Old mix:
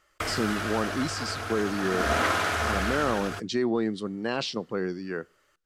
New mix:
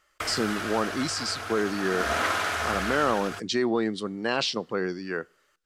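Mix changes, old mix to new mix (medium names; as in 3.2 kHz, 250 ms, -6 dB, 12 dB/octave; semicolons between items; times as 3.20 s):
speech +5.0 dB; master: add bass shelf 440 Hz -7 dB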